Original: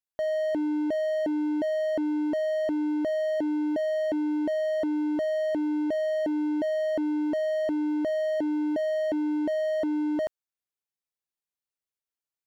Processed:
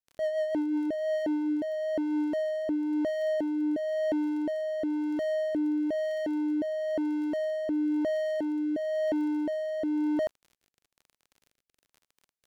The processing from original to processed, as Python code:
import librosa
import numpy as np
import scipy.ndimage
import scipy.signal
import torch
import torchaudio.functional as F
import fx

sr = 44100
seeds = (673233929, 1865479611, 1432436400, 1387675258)

y = fx.dmg_crackle(x, sr, seeds[0], per_s=36.0, level_db=-42.0)
y = fx.rotary_switch(y, sr, hz=7.0, then_hz=1.0, switch_at_s=0.26)